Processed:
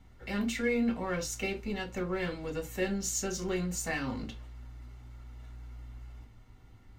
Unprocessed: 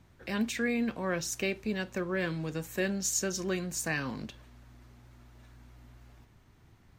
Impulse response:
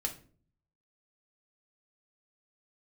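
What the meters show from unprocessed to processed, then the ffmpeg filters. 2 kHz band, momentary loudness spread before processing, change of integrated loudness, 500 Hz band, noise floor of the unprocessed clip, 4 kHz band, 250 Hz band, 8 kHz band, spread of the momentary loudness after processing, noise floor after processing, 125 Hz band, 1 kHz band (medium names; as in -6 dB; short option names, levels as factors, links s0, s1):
-2.5 dB, 7 LU, -1.0 dB, 0.0 dB, -61 dBFS, -2.0 dB, 0.0 dB, -2.5 dB, 19 LU, -56 dBFS, -0.5 dB, +0.5 dB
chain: -filter_complex "[0:a]highshelf=f=6600:g=-4,asplit=2[s0][s1];[s1]volume=50.1,asoftclip=hard,volume=0.02,volume=0.473[s2];[s0][s2]amix=inputs=2:normalize=0[s3];[1:a]atrim=start_sample=2205,afade=t=out:st=0.17:d=0.01,atrim=end_sample=7938,asetrate=70560,aresample=44100[s4];[s3][s4]afir=irnorm=-1:irlink=0"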